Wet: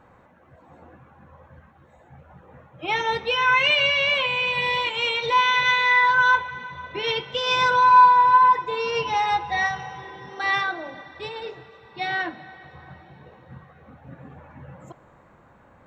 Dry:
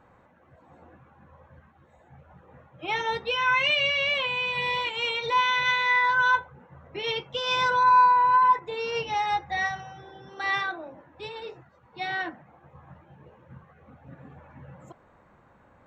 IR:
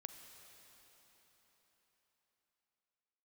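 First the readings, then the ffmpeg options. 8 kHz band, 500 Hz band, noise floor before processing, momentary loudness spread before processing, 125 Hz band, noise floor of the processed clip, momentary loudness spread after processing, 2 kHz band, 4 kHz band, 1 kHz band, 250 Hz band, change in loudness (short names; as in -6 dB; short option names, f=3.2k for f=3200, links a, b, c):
n/a, +4.0 dB, -59 dBFS, 19 LU, +4.0 dB, -54 dBFS, 20 LU, +4.0 dB, +4.0 dB, +4.5 dB, +4.0 dB, +4.5 dB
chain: -filter_complex "[0:a]asplit=2[a][b];[1:a]atrim=start_sample=2205[c];[b][c]afir=irnorm=-1:irlink=0,volume=1dB[d];[a][d]amix=inputs=2:normalize=0"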